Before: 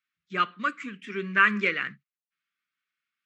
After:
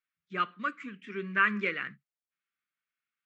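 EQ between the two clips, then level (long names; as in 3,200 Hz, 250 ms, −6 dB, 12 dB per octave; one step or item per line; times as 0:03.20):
high-shelf EQ 4,500 Hz −10.5 dB
−4.0 dB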